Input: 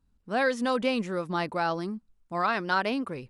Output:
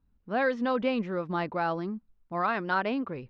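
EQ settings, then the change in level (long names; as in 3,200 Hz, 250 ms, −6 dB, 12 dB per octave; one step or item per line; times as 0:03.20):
Butterworth low-pass 8,800 Hz
high-frequency loss of the air 270 metres
0.0 dB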